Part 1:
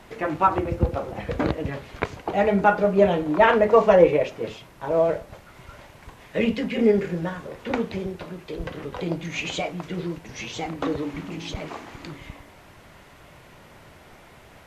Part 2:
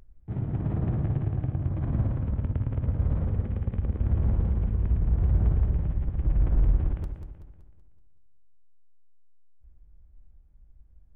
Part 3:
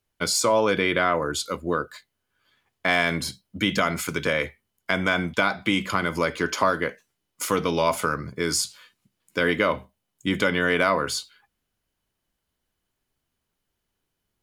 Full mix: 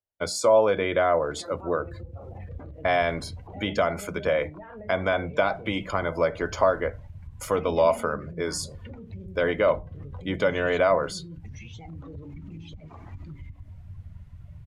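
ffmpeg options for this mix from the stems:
-filter_complex "[0:a]asubboost=boost=5.5:cutoff=140,acompressor=threshold=0.0501:ratio=12,adelay=1200,volume=0.596[s0];[2:a]equalizer=f=620:w=1.3:g=12.5,volume=0.422[s1];[s0]alimiter=level_in=3.35:limit=0.0631:level=0:latency=1:release=51,volume=0.299,volume=1[s2];[s1][s2]amix=inputs=2:normalize=0,afftdn=nr=15:nf=-45,equalizer=f=90:w=2.5:g=10,bandreject=f=60:t=h:w=6,bandreject=f=120:t=h:w=6,bandreject=f=180:t=h:w=6,bandreject=f=240:t=h:w=6,bandreject=f=300:t=h:w=6"

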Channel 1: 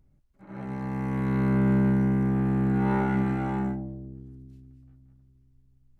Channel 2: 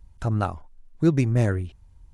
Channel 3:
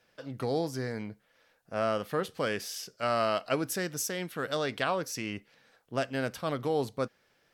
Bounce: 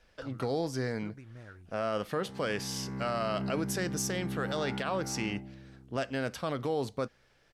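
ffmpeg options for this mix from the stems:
-filter_complex "[0:a]adelay=1650,volume=0.251[s0];[1:a]equalizer=f=1400:w=1.6:g=14,acompressor=threshold=0.0501:ratio=6,volume=0.106[s1];[2:a]lowpass=10000,volume=1.19[s2];[s0][s1][s2]amix=inputs=3:normalize=0,alimiter=limit=0.075:level=0:latency=1:release=70"

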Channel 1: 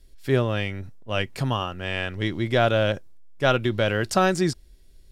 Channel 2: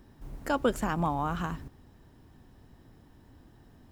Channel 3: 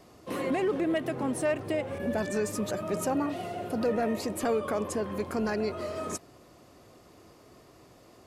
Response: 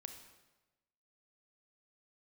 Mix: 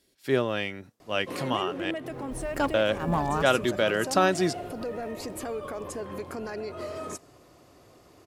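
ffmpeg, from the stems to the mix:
-filter_complex "[0:a]highpass=210,volume=0.841,asplit=3[s0][s1][s2];[s0]atrim=end=1.91,asetpts=PTS-STARTPTS,afade=t=out:st=1.906:d=0.004:c=hsin[s3];[s1]atrim=start=1.91:end=2.74,asetpts=PTS-STARTPTS,volume=0[s4];[s2]atrim=start=2.74,asetpts=PTS-STARTPTS,afade=t=in:d=0.004:c=hsin[s5];[s3][s4][s5]concat=n=3:v=0:a=1,asplit=2[s6][s7];[1:a]aeval=exprs='clip(val(0),-1,0.0668)':c=same,adelay=2100,volume=1.33[s8];[2:a]equalizer=f=210:t=o:w=0.23:g=-7.5,alimiter=level_in=1.33:limit=0.0631:level=0:latency=1:release=124,volume=0.75,adelay=1000,volume=0.891,asplit=2[s9][s10];[s10]volume=0.224[s11];[s7]apad=whole_len=265146[s12];[s8][s12]sidechaincompress=threshold=0.00631:ratio=8:attack=33:release=103[s13];[3:a]atrim=start_sample=2205[s14];[s11][s14]afir=irnorm=-1:irlink=0[s15];[s6][s13][s9][s15]amix=inputs=4:normalize=0"

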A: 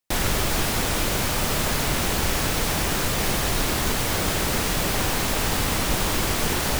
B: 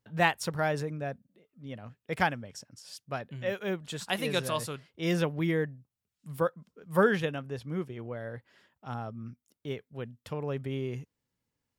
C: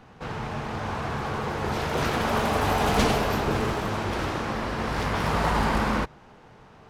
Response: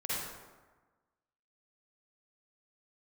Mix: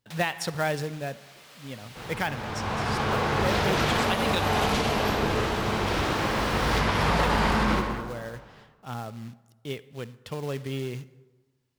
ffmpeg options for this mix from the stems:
-filter_complex "[0:a]highpass=f=1000:p=1,highshelf=f=6000:g=-7.5,volume=0.237,asplit=2[s0][s1];[s1]volume=0.106[s2];[1:a]acrusher=bits=4:mode=log:mix=0:aa=0.000001,volume=1.12,asplit=3[s3][s4][s5];[s3]atrim=end=4.4,asetpts=PTS-STARTPTS,afade=t=out:st=4.396:d=0.004:c=hsin[s6];[s4]atrim=start=4.4:end=7.21,asetpts=PTS-STARTPTS,volume=0[s7];[s5]atrim=start=7.21,asetpts=PTS-STARTPTS,afade=t=in:d=0.004:c=hsin[s8];[s6][s7][s8]concat=n=3:v=0:a=1,asplit=3[s9][s10][s11];[s10]volume=0.0841[s12];[2:a]dynaudnorm=f=380:g=5:m=4.73,adelay=1750,volume=0.299,asplit=2[s13][s14];[s14]volume=0.447[s15];[s11]apad=whole_len=299452[s16];[s0][s16]sidechaincompress=threshold=0.00501:ratio=8:attack=6:release=1240[s17];[3:a]atrim=start_sample=2205[s18];[s2][s12][s15]amix=inputs=3:normalize=0[s19];[s19][s18]afir=irnorm=-1:irlink=0[s20];[s17][s9][s13][s20]amix=inputs=4:normalize=0,equalizer=f=3600:t=o:w=1.6:g=4.5,alimiter=limit=0.211:level=0:latency=1:release=155"

